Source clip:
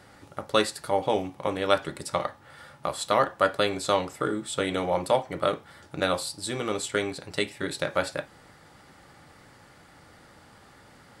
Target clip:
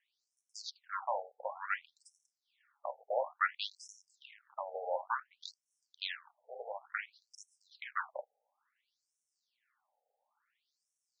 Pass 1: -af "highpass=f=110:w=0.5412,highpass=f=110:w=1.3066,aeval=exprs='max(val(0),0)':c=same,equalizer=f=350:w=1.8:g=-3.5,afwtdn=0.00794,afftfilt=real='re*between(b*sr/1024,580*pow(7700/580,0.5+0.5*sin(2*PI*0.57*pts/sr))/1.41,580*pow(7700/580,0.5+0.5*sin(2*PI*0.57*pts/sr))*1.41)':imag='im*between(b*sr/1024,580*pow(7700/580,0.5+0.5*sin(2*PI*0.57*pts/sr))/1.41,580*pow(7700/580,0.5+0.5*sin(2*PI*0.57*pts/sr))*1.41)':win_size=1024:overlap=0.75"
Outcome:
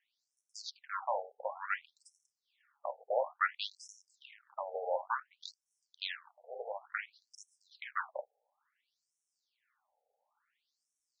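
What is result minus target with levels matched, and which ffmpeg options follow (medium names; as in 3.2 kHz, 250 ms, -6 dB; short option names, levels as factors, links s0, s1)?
250 Hz band +3.5 dB
-af "highpass=f=110:w=0.5412,highpass=f=110:w=1.3066,aeval=exprs='max(val(0),0)':c=same,equalizer=f=350:w=1.8:g=-10.5,afwtdn=0.00794,afftfilt=real='re*between(b*sr/1024,580*pow(7700/580,0.5+0.5*sin(2*PI*0.57*pts/sr))/1.41,580*pow(7700/580,0.5+0.5*sin(2*PI*0.57*pts/sr))*1.41)':imag='im*between(b*sr/1024,580*pow(7700/580,0.5+0.5*sin(2*PI*0.57*pts/sr))/1.41,580*pow(7700/580,0.5+0.5*sin(2*PI*0.57*pts/sr))*1.41)':win_size=1024:overlap=0.75"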